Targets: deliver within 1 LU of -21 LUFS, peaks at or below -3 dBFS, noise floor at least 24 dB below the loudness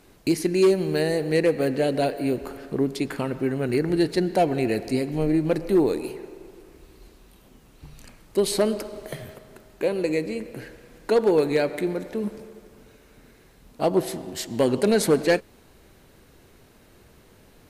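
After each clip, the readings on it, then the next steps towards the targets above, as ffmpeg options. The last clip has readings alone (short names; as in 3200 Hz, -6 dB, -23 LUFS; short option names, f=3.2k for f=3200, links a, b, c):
loudness -24.0 LUFS; peak -12.0 dBFS; loudness target -21.0 LUFS
-> -af "volume=3dB"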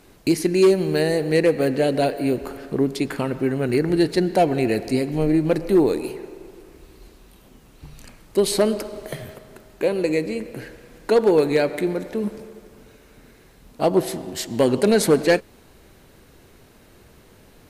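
loudness -21.0 LUFS; peak -9.0 dBFS; noise floor -51 dBFS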